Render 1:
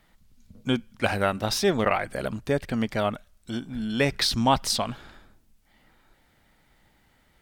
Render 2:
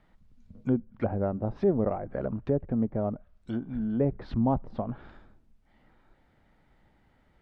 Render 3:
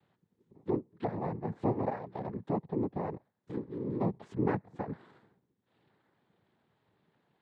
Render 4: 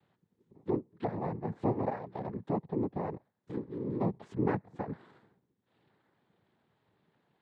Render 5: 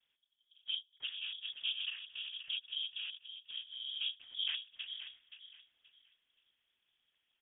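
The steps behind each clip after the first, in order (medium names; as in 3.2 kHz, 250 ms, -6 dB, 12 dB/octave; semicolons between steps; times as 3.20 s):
low-pass 1.1 kHz 6 dB/octave; low-pass that closes with the level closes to 580 Hz, closed at -25 dBFS
treble shelf 3.2 kHz -10.5 dB; noise-vocoded speech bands 6; trim -5 dB
no audible change
on a send: feedback delay 526 ms, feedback 27%, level -10.5 dB; on the sum: frequency inversion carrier 3.5 kHz; trim -8 dB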